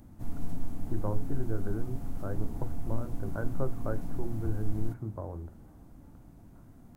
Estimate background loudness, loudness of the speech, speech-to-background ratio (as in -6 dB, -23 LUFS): -42.0 LUFS, -38.0 LUFS, 4.0 dB